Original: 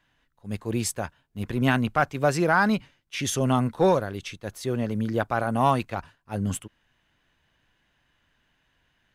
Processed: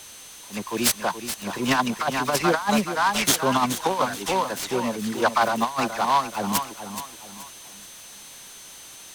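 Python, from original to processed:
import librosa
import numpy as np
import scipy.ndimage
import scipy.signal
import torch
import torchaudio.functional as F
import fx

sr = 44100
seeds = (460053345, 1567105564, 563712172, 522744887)

p1 = scipy.signal.sosfilt(scipy.signal.butter(2, 11000.0, 'lowpass', fs=sr, output='sos'), x)
p2 = fx.peak_eq(p1, sr, hz=1000.0, db=13.0, octaves=0.61)
p3 = fx.dereverb_blind(p2, sr, rt60_s=0.62)
p4 = scipy.signal.sosfilt(scipy.signal.butter(4, 160.0, 'highpass', fs=sr, output='sos'), p3)
p5 = fx.high_shelf(p4, sr, hz=2800.0, db=11.0)
p6 = fx.dispersion(p5, sr, late='lows', ms=62.0, hz=2300.0)
p7 = p6 + fx.echo_feedback(p6, sr, ms=426, feedback_pct=37, wet_db=-10.0, dry=0)
p8 = fx.over_compress(p7, sr, threshold_db=-18.0, ratio=-0.5)
p9 = p8 + 10.0 ** (-39.0 / 20.0) * np.sin(2.0 * np.pi * 6200.0 * np.arange(len(p8)) / sr)
p10 = fx.noise_mod_delay(p9, sr, seeds[0], noise_hz=2500.0, depth_ms=0.031)
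y = p10 * librosa.db_to_amplitude(-1.0)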